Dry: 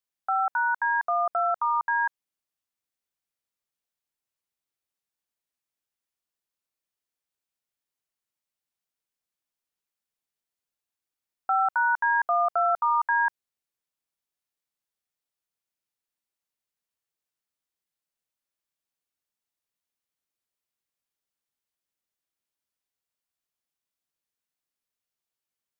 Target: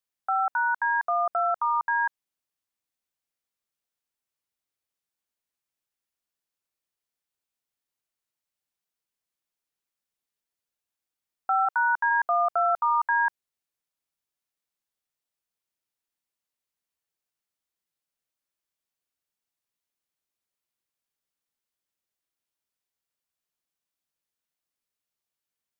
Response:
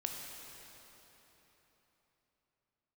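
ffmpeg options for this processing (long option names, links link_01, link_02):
-filter_complex "[0:a]asplit=3[link_01][link_02][link_03];[link_01]afade=type=out:start_time=11.65:duration=0.02[link_04];[link_02]highpass=frequency=490:width=0.5412,highpass=frequency=490:width=1.3066,afade=type=in:start_time=11.65:duration=0.02,afade=type=out:start_time=12.09:duration=0.02[link_05];[link_03]afade=type=in:start_time=12.09:duration=0.02[link_06];[link_04][link_05][link_06]amix=inputs=3:normalize=0"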